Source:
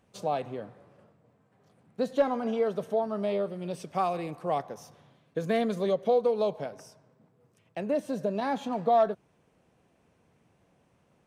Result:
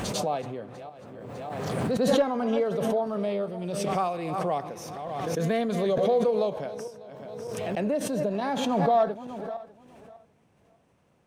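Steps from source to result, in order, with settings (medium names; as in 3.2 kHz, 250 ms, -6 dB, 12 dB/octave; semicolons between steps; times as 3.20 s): backward echo that repeats 299 ms, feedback 43%, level -14 dB; pre-echo 101 ms -22 dB; swell ahead of each attack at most 23 dB/s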